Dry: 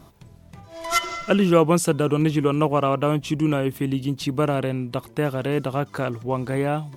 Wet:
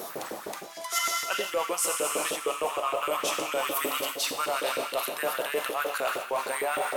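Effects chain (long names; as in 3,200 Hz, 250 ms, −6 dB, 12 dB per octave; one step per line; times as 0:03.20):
wind on the microphone 170 Hz −25 dBFS
high-shelf EQ 4,600 Hz +11 dB
on a send: echo through a band-pass that steps 440 ms, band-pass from 2,800 Hz, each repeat −1.4 octaves, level −8.5 dB
on the sum: four-comb reverb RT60 2.7 s, combs from 30 ms, DRR 5 dB
auto-filter high-pass saw up 6.5 Hz 400–1,800 Hz
spectral tilt +2 dB per octave
reversed playback
downward compressor 6 to 1, threshold −31 dBFS, peak gain reduction 21.5 dB
reversed playback
leveller curve on the samples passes 1
level +1 dB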